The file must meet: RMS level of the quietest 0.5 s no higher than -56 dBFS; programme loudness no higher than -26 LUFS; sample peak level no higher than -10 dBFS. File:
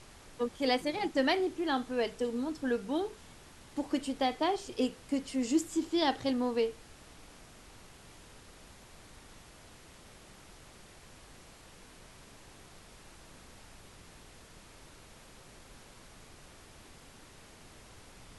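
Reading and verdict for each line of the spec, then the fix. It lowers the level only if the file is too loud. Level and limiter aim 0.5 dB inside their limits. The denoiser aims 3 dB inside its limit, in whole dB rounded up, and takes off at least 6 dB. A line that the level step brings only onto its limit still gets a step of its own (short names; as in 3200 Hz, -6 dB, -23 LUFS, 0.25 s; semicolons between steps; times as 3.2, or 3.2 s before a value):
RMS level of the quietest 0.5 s -54 dBFS: fail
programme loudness -32.5 LUFS: OK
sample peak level -15.5 dBFS: OK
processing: denoiser 6 dB, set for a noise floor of -54 dBFS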